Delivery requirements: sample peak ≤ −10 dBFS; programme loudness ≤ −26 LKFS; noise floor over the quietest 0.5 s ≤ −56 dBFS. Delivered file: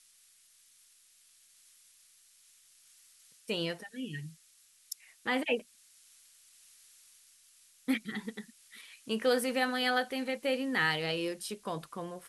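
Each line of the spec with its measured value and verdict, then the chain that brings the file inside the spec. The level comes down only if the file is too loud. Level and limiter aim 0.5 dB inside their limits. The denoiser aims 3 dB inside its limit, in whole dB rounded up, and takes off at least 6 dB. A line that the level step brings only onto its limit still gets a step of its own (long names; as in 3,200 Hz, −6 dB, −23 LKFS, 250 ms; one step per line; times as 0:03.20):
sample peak −16.5 dBFS: in spec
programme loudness −33.5 LKFS: in spec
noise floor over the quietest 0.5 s −64 dBFS: in spec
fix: no processing needed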